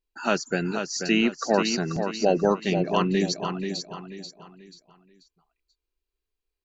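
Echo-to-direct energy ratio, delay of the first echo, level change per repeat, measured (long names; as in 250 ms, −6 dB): −6.5 dB, 486 ms, −9.5 dB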